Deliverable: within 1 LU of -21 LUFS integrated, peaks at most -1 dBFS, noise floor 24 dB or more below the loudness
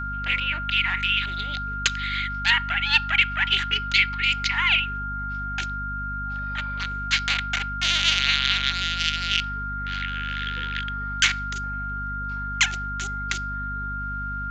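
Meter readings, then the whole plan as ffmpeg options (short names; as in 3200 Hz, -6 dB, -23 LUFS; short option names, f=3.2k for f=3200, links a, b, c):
hum 50 Hz; harmonics up to 250 Hz; hum level -31 dBFS; steady tone 1400 Hz; tone level -29 dBFS; loudness -23.5 LUFS; peak -4.5 dBFS; loudness target -21.0 LUFS
-> -af "bandreject=f=50:t=h:w=6,bandreject=f=100:t=h:w=6,bandreject=f=150:t=h:w=6,bandreject=f=200:t=h:w=6,bandreject=f=250:t=h:w=6"
-af "bandreject=f=1.4k:w=30"
-af "volume=2.5dB"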